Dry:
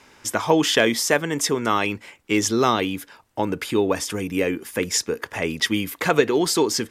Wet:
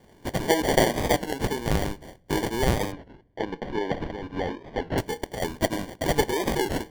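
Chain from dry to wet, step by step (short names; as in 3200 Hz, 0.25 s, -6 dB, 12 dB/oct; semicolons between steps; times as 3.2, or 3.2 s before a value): weighting filter A; sample-and-hold 34×; 2.93–4.98 air absorption 250 m; on a send at -21 dB: reverb RT60 0.65 s, pre-delay 4 ms; on the sum: record warp 33 1/3 rpm, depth 100 cents; gain -2 dB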